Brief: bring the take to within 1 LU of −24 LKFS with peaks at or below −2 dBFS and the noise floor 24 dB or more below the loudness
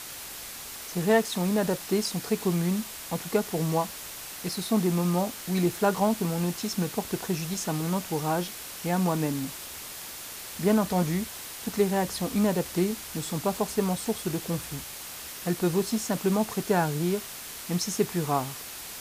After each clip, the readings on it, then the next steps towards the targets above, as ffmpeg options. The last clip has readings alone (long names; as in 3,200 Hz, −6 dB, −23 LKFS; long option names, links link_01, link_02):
background noise floor −40 dBFS; target noise floor −53 dBFS; integrated loudness −28.5 LKFS; sample peak −10.5 dBFS; target loudness −24.0 LKFS
→ -af "afftdn=noise_reduction=13:noise_floor=-40"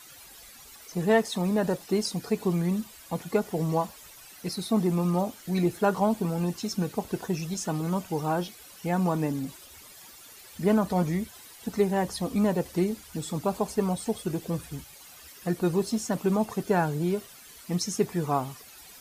background noise floor −49 dBFS; target noise floor −53 dBFS
→ -af "afftdn=noise_reduction=6:noise_floor=-49"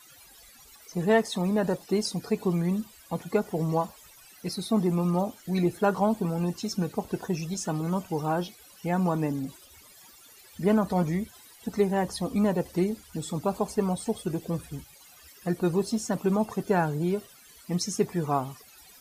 background noise floor −53 dBFS; integrated loudness −28.5 LKFS; sample peak −11.0 dBFS; target loudness −24.0 LKFS
→ -af "volume=4.5dB"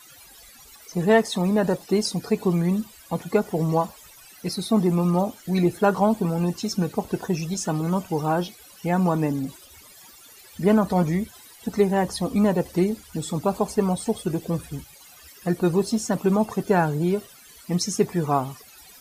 integrated loudness −24.0 LKFS; sample peak −6.5 dBFS; background noise floor −49 dBFS